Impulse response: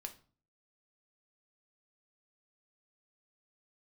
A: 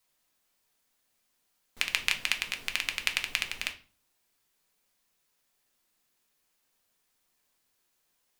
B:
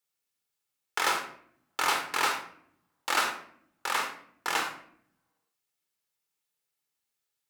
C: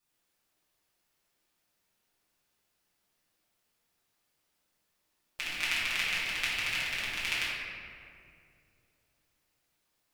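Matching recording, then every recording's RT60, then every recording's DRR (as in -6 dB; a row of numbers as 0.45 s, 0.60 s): A; 0.40 s, 0.65 s, 2.5 s; 4.5 dB, 3.0 dB, -10.5 dB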